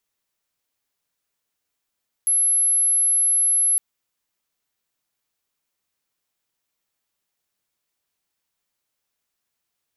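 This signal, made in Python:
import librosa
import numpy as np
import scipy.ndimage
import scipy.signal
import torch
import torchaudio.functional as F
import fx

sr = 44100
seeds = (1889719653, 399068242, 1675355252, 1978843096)

y = 10.0 ** (-15.5 / 20.0) * np.sin(2.0 * np.pi * (11100.0 * (np.arange(round(1.51 * sr)) / sr)))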